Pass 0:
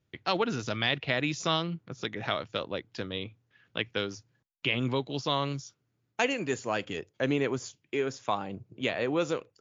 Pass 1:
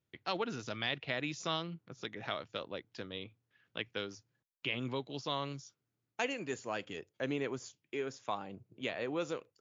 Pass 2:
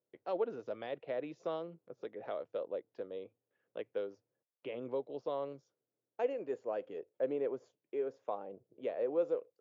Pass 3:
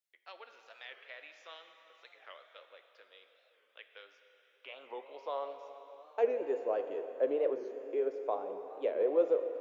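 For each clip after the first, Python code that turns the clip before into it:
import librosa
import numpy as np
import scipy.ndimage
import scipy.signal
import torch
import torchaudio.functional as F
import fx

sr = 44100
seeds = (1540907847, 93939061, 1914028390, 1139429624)

y1 = fx.low_shelf(x, sr, hz=110.0, db=-6.0)
y1 = F.gain(torch.from_numpy(y1), -7.5).numpy()
y2 = fx.bandpass_q(y1, sr, hz=510.0, q=2.9)
y2 = F.gain(torch.from_numpy(y2), 6.5).numpy()
y3 = fx.filter_sweep_highpass(y2, sr, from_hz=2000.0, to_hz=370.0, start_s=3.94, end_s=6.43, q=1.1)
y3 = fx.rev_plate(y3, sr, seeds[0], rt60_s=4.1, hf_ratio=0.95, predelay_ms=0, drr_db=6.5)
y3 = fx.record_warp(y3, sr, rpm=45.0, depth_cents=160.0)
y3 = F.gain(torch.from_numpy(y3), 2.5).numpy()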